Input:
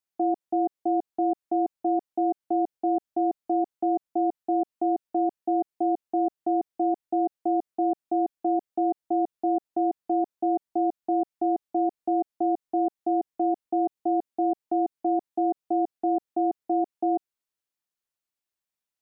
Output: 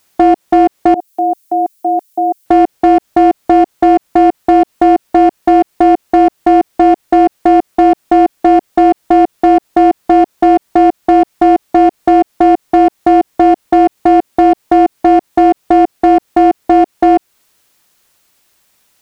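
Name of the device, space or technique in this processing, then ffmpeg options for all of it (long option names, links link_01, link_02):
loud club master: -filter_complex "[0:a]asettb=1/sr,asplit=3[link_01][link_02][link_03];[link_01]atrim=end=0.944[link_04];[link_02]atrim=start=0.94:end=2.46,asetpts=PTS-STARTPTS,afade=type=in:duration=0.004:curve=qsin,afade=type=out:start_time=1.516:duration=0.004:curve=qsin,aderivative[link_05];[link_03]atrim=start=2.456[link_06];[link_04][link_05]acrossfade=duration=0.004:curve1=hsin:curve2=qsin[link_07];[link_07][link_06]acrossfade=duration=0.004:curve1=qsin:curve2=hsin,acompressor=threshold=-35dB:ratio=1.5,asoftclip=type=hard:threshold=-24.5dB,alimiter=level_in=34dB:limit=-1dB:release=50:level=0:latency=1,volume=-1dB"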